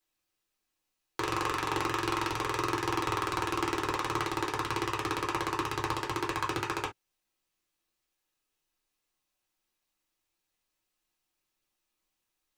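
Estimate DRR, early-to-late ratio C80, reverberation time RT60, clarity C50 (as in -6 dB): -2.5 dB, 53.0 dB, not exponential, 13.5 dB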